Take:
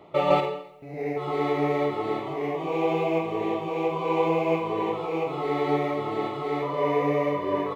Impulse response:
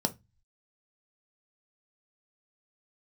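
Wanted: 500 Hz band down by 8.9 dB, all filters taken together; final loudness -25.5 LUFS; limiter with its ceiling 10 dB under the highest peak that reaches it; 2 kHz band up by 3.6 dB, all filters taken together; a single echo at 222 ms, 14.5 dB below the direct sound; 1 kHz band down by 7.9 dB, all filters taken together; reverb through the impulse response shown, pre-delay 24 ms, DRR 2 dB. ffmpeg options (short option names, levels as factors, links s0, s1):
-filter_complex "[0:a]equalizer=f=500:t=o:g=-9,equalizer=f=1000:t=o:g=-8.5,equalizer=f=2000:t=o:g=6,alimiter=limit=0.0794:level=0:latency=1,aecho=1:1:222:0.188,asplit=2[s0][s1];[1:a]atrim=start_sample=2205,adelay=24[s2];[s1][s2]afir=irnorm=-1:irlink=0,volume=0.398[s3];[s0][s3]amix=inputs=2:normalize=0,volume=1.33"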